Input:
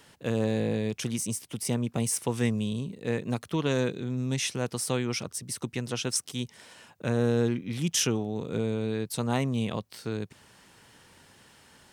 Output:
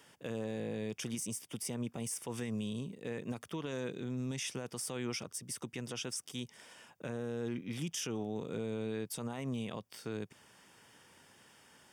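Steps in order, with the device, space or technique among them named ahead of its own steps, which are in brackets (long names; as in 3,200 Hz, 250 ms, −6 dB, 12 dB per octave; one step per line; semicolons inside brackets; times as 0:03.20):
PA system with an anti-feedback notch (high-pass filter 160 Hz 6 dB per octave; Butterworth band-reject 4,100 Hz, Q 7.4; brickwall limiter −24.5 dBFS, peak gain reduction 11.5 dB)
level −4.5 dB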